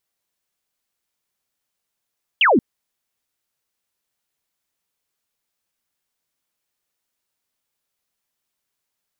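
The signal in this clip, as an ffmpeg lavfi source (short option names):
-f lavfi -i "aevalsrc='0.282*clip(t/0.002,0,1)*clip((0.18-t)/0.002,0,1)*sin(2*PI*3300*0.18/log(200/3300)*(exp(log(200/3300)*t/0.18)-1))':d=0.18:s=44100"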